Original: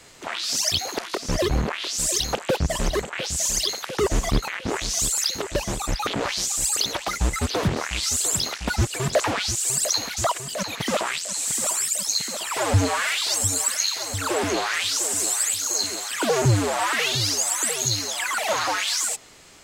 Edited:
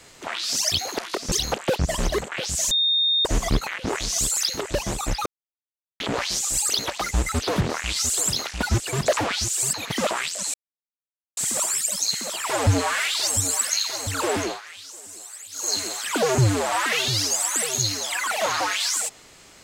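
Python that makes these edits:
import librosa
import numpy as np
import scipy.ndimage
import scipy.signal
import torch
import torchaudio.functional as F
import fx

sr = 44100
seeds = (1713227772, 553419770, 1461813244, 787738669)

y = fx.edit(x, sr, fx.cut(start_s=1.32, length_s=0.81),
    fx.bleep(start_s=3.52, length_s=0.54, hz=3670.0, db=-17.5),
    fx.insert_silence(at_s=6.07, length_s=0.74),
    fx.cut(start_s=9.8, length_s=0.83),
    fx.insert_silence(at_s=11.44, length_s=0.83),
    fx.fade_down_up(start_s=14.45, length_s=1.34, db=-16.5, fade_s=0.23), tone=tone)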